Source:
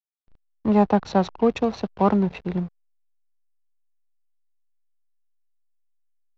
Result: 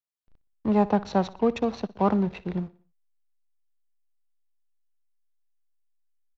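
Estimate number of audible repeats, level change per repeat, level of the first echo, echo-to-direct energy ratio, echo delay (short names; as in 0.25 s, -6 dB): 3, -6.5 dB, -19.0 dB, -18.0 dB, 60 ms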